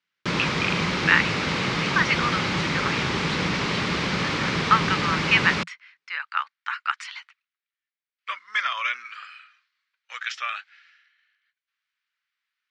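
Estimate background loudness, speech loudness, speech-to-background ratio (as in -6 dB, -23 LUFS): -24.5 LUFS, -26.0 LUFS, -1.5 dB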